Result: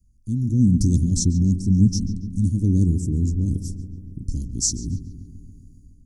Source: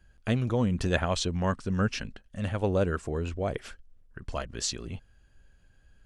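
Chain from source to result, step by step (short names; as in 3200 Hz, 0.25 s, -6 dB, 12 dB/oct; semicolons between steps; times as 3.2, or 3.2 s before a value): Chebyshev band-stop 290–5600 Hz, order 4; AGC gain up to 12 dB; darkening echo 0.14 s, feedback 72%, low-pass 2600 Hz, level -11.5 dB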